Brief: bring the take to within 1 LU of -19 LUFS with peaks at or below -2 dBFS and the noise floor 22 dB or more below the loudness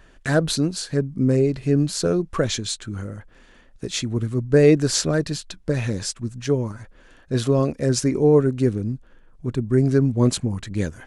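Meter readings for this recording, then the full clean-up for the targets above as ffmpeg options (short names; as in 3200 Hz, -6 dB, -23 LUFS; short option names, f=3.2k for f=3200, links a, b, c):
loudness -21.5 LUFS; peak -3.5 dBFS; loudness target -19.0 LUFS
-> -af "volume=2.5dB,alimiter=limit=-2dB:level=0:latency=1"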